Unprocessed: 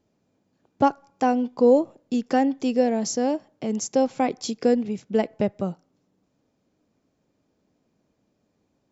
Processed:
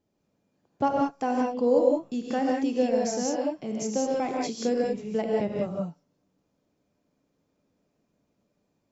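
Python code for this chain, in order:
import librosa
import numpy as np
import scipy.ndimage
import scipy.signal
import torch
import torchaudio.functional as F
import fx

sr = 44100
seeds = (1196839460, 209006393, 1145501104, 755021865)

y = fx.rev_gated(x, sr, seeds[0], gate_ms=210, shape='rising', drr_db=-2.5)
y = y * 10.0 ** (-7.0 / 20.0)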